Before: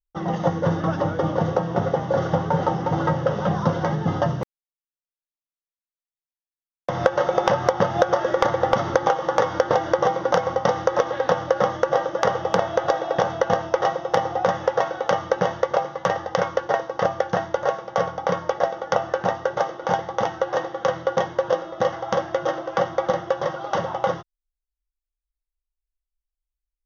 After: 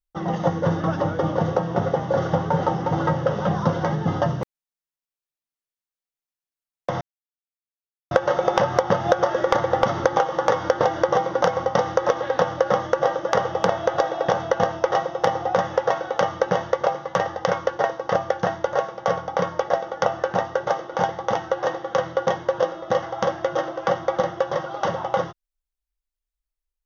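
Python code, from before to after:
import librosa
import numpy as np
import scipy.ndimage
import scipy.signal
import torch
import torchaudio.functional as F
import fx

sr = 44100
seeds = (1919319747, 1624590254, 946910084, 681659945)

y = fx.edit(x, sr, fx.insert_silence(at_s=7.01, length_s=1.1), tone=tone)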